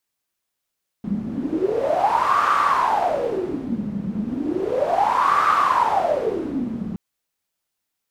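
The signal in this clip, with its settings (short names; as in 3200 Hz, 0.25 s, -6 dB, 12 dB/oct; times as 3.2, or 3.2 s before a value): wind-like swept noise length 5.92 s, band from 200 Hz, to 1200 Hz, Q 11, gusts 2, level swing 9 dB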